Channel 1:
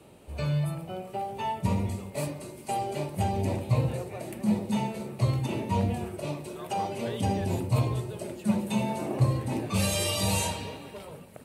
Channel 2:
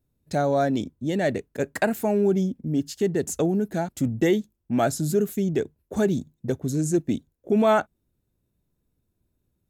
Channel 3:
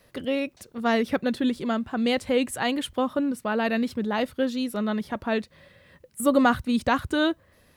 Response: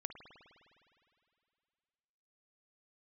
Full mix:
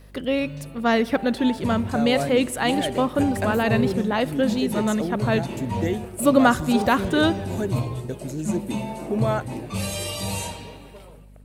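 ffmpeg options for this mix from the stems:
-filter_complex "[0:a]dynaudnorm=f=910:g=3:m=4.22,volume=0.266[s0];[1:a]adelay=1600,volume=0.531[s1];[2:a]volume=1.12,asplit=2[s2][s3];[s3]volume=0.422[s4];[3:a]atrim=start_sample=2205[s5];[s4][s5]afir=irnorm=-1:irlink=0[s6];[s0][s1][s2][s6]amix=inputs=4:normalize=0,aeval=exprs='val(0)+0.00501*(sin(2*PI*50*n/s)+sin(2*PI*2*50*n/s)/2+sin(2*PI*3*50*n/s)/3+sin(2*PI*4*50*n/s)/4+sin(2*PI*5*50*n/s)/5)':c=same"

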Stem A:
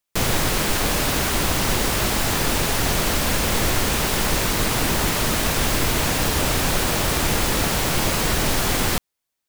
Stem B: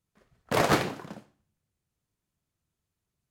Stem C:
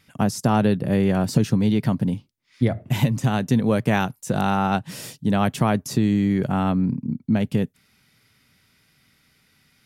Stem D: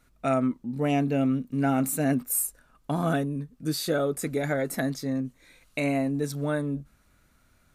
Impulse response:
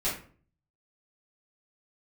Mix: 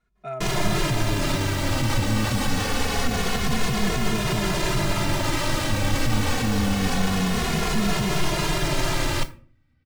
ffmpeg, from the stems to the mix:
-filter_complex "[0:a]adelay=250,volume=1.06,asplit=2[s0][s1];[s1]volume=0.126[s2];[1:a]volume=0.251,asplit=2[s3][s4];[s4]volume=0.596[s5];[2:a]aemphasis=mode=reproduction:type=riaa,adelay=450,volume=0.422[s6];[3:a]volume=0.501[s7];[s0][s6][s7]amix=inputs=3:normalize=0,adynamicsmooth=sensitivity=3:basefreq=5200,alimiter=limit=0.224:level=0:latency=1:release=20,volume=1[s8];[4:a]atrim=start_sample=2205[s9];[s2][s5]amix=inputs=2:normalize=0[s10];[s10][s9]afir=irnorm=-1:irlink=0[s11];[s3][s8][s11]amix=inputs=3:normalize=0,asplit=2[s12][s13];[s13]adelay=2.4,afreqshift=-0.26[s14];[s12][s14]amix=inputs=2:normalize=1"

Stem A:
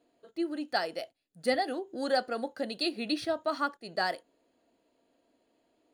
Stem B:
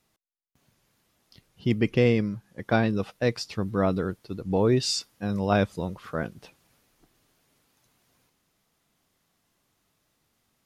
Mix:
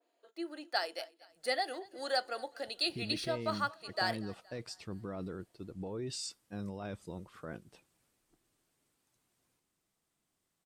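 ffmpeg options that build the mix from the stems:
-filter_complex "[0:a]highpass=580,adynamicequalizer=threshold=0.00708:dfrequency=2700:dqfactor=0.7:tfrequency=2700:tqfactor=0.7:attack=5:release=100:ratio=0.375:range=2:mode=boostabove:tftype=highshelf,volume=0.708,asplit=2[s0][s1];[s1]volume=0.075[s2];[1:a]alimiter=limit=0.0841:level=0:latency=1:release=13,equalizer=f=8200:t=o:w=0.28:g=10,adelay=1300,volume=0.251[s3];[s2]aecho=0:1:234|468|702|936|1170|1404|1638:1|0.5|0.25|0.125|0.0625|0.0312|0.0156[s4];[s0][s3][s4]amix=inputs=3:normalize=0,equalizer=f=340:t=o:w=0.34:g=4.5"

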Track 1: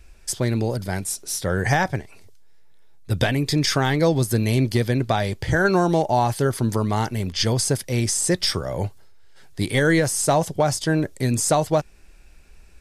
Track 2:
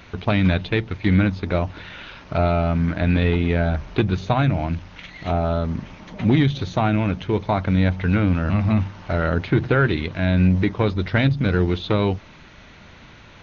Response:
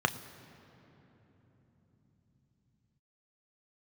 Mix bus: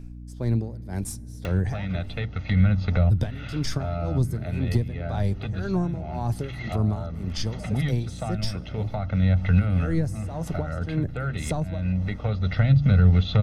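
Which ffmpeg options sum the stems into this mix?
-filter_complex "[0:a]lowshelf=f=340:g=12,aeval=exprs='1.19*(cos(1*acos(clip(val(0)/1.19,-1,1)))-cos(1*PI/2))+0.0299*(cos(8*acos(clip(val(0)/1.19,-1,1)))-cos(8*PI/2))':c=same,aeval=exprs='val(0)*pow(10,-23*(0.5-0.5*cos(2*PI*1.9*n/s))/20)':c=same,volume=0.531,asplit=3[s0][s1][s2];[s1]volume=0.0794[s3];[1:a]acompressor=mode=upward:threshold=0.1:ratio=2.5,aecho=1:1:1.5:0.87,adelay=1450,volume=1.33[s4];[s2]apad=whole_len=656049[s5];[s4][s5]sidechaincompress=threshold=0.0158:ratio=6:attack=16:release=1010[s6];[2:a]atrim=start_sample=2205[s7];[s3][s7]afir=irnorm=-1:irlink=0[s8];[s0][s6][s8]amix=inputs=3:normalize=0,acrossover=split=200[s9][s10];[s10]acompressor=threshold=0.0316:ratio=6[s11];[s9][s11]amix=inputs=2:normalize=0,aeval=exprs='val(0)+0.0126*(sin(2*PI*60*n/s)+sin(2*PI*2*60*n/s)/2+sin(2*PI*3*60*n/s)/3+sin(2*PI*4*60*n/s)/4+sin(2*PI*5*60*n/s)/5)':c=same"

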